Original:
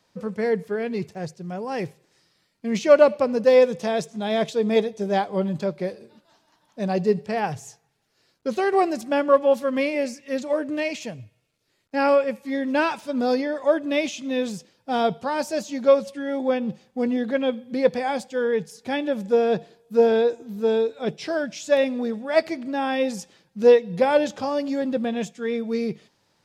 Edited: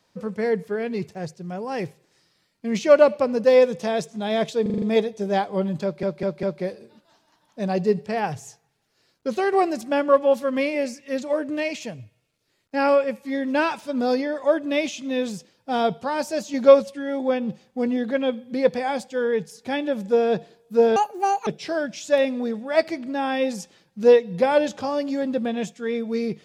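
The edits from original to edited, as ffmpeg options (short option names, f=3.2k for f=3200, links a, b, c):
-filter_complex "[0:a]asplit=13[a][b][c][d][e][f][g][h][i][j][k][l][m];[a]atrim=end=4.662[n];[b]atrim=start=4.618:end=4.662[o];[c]atrim=start=4.618:end=4.662[p];[d]atrim=start=4.618:end=4.662[q];[e]atrim=start=4.618:end=4.662[r];[f]atrim=start=4.618:end=5.832[s];[g]atrim=start=5.628:end=5.832[t];[h]atrim=start=5.628:end=5.832[u];[i]atrim=start=5.628:end=15.742[v];[j]atrim=start=15.738:end=16.022,asetpts=PTS-STARTPTS,volume=4dB[w];[k]atrim=start=16.018:end=20.164[x];[l]atrim=start=20.16:end=21.06,asetpts=PTS-STARTPTS,asetrate=78057,aresample=44100[y];[m]atrim=start=21.056[z];[n][o]acrossfade=d=0.004:c1=hsin:c2=hsin[aa];[aa][p]acrossfade=d=0.004:c1=hsin:c2=hsin[ab];[ab][q]acrossfade=d=0.004:c1=hsin:c2=hsin[ac];[ac][r]acrossfade=d=0.004:c1=hsin:c2=hsin[ad];[ad][s]acrossfade=d=0.004:c1=hsin:c2=hsin[ae];[ae][t]acrossfade=d=0.004:c1=hsin:c2=hsin[af];[af][u]acrossfade=d=0.004:c1=hsin:c2=hsin[ag];[ag][v]acrossfade=d=0.004:c1=hsin:c2=hsin[ah];[ah][w]acrossfade=d=0.004:c1=hsin:c2=hsin[ai];[ai][x]acrossfade=d=0.004:c1=hsin:c2=hsin[aj];[aj][y]acrossfade=d=0.004:c1=hsin:c2=hsin[ak];[ak][z]acrossfade=d=0.004:c1=hsin:c2=hsin"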